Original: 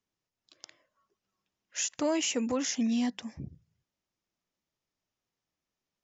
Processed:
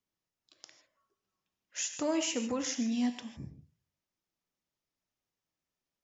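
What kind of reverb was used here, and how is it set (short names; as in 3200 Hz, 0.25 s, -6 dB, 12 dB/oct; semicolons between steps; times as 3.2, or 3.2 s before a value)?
non-linear reverb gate 0.18 s flat, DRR 7.5 dB; gain -3.5 dB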